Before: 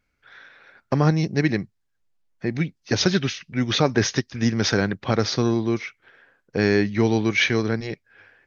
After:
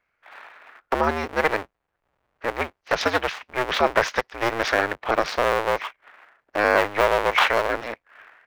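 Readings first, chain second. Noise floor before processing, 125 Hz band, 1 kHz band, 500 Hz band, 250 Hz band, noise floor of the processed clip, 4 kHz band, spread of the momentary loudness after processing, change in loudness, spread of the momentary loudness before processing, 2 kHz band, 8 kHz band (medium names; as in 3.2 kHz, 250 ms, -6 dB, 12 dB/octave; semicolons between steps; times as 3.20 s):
-73 dBFS, -16.0 dB, +9.0 dB, +1.5 dB, -11.5 dB, -78 dBFS, -3.0 dB, 11 LU, -0.5 dB, 9 LU, +3.5 dB, no reading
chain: cycle switcher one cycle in 2, inverted; three-band isolator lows -18 dB, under 500 Hz, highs -16 dB, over 2.7 kHz; trim +5 dB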